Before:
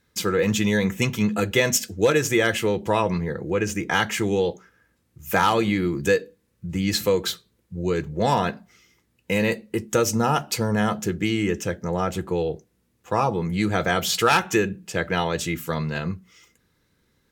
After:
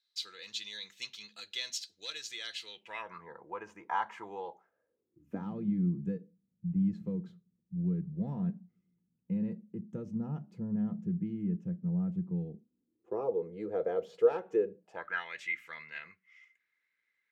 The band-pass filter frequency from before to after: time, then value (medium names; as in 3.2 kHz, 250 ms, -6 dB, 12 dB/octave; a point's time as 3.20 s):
band-pass filter, Q 6.7
2.67 s 4.1 kHz
3.28 s 960 Hz
4.49 s 960 Hz
5.55 s 180 Hz
12.44 s 180 Hz
13.30 s 470 Hz
14.76 s 470 Hz
15.26 s 2.1 kHz